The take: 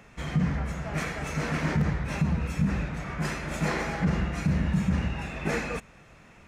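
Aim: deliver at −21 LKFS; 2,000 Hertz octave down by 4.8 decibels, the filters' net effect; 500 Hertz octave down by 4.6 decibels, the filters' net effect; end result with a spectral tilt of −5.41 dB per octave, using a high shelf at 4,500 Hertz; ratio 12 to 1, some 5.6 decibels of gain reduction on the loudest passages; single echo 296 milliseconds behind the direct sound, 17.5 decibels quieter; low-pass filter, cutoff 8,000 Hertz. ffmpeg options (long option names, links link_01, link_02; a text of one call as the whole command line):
ffmpeg -i in.wav -af "lowpass=8000,equalizer=frequency=500:width_type=o:gain=-5.5,equalizer=frequency=2000:width_type=o:gain=-7.5,highshelf=frequency=4500:gain=9,acompressor=threshold=-26dB:ratio=12,aecho=1:1:296:0.133,volume=12dB" out.wav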